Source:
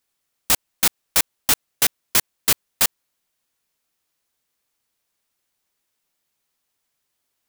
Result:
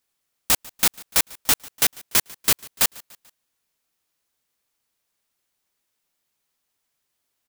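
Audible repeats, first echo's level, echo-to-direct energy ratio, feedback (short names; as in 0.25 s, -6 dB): 2, -23.0 dB, -22.0 dB, 49%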